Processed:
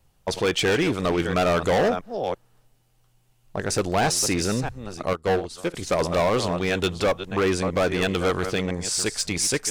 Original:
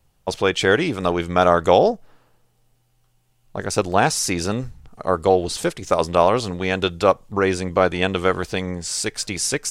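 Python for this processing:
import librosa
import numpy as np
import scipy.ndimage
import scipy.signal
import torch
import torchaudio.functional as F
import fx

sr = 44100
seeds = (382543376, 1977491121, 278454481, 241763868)

y = fx.reverse_delay(x, sr, ms=335, wet_db=-13)
y = np.clip(10.0 ** (17.0 / 20.0) * y, -1.0, 1.0) / 10.0 ** (17.0 / 20.0)
y = fx.upward_expand(y, sr, threshold_db=-31.0, expansion=2.5, at=(5.13, 5.74))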